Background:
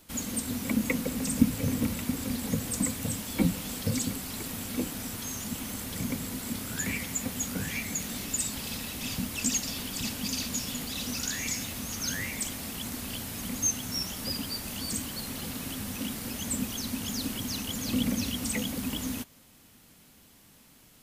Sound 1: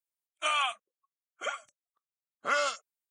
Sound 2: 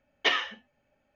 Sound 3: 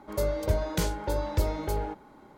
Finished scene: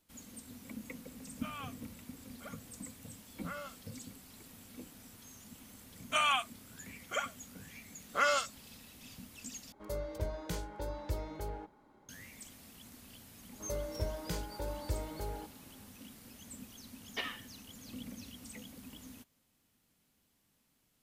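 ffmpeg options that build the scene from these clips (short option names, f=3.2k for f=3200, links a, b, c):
-filter_complex "[1:a]asplit=2[a][b];[3:a]asplit=2[c][d];[0:a]volume=-18dB[e];[a]lowpass=f=1.9k:p=1[f];[e]asplit=2[g][h];[g]atrim=end=9.724[i];[c]atrim=end=2.37,asetpts=PTS-STARTPTS,volume=-11dB[j];[h]atrim=start=12.086[k];[f]atrim=end=3.1,asetpts=PTS-STARTPTS,volume=-14.5dB,afade=t=in:d=0.004:c=hsin,afade=t=out:st=3.096:d=0.004:c=hsin,adelay=990[l];[b]atrim=end=3.1,asetpts=PTS-STARTPTS,volume=-1dB,afade=t=in:d=0.004:c=hsin,afade=t=out:st=3.096:d=0.004:c=hsin,adelay=5700[m];[d]atrim=end=2.37,asetpts=PTS-STARTPTS,volume=-10.5dB,afade=t=in:d=0.004:c=hsin,afade=t=out:st=2.366:d=0.004:c=hsin,adelay=13520[n];[2:a]atrim=end=1.15,asetpts=PTS-STARTPTS,volume=-14dB,afade=t=in:d=0.004:c=hsin,afade=t=out:st=1.146:d=0.004:c=hsin,adelay=16920[o];[i][j]acrossfade=d=0.004:c1=hsin:c2=hsin[p];[p][k]acrossfade=d=0.004:c1=hsin:c2=hsin[q];[q][l][m][n][o]amix=inputs=5:normalize=0"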